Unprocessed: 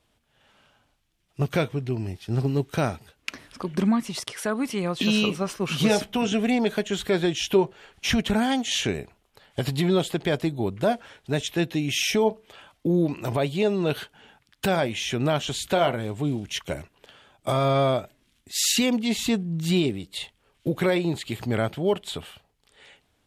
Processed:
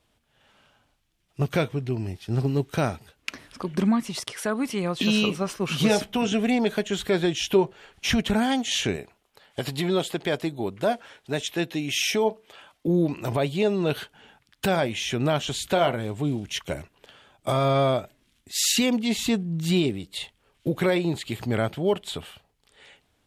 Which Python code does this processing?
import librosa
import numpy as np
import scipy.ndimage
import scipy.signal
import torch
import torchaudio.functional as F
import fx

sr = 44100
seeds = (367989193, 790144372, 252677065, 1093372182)

y = fx.low_shelf(x, sr, hz=160.0, db=-10.5, at=(8.96, 12.88))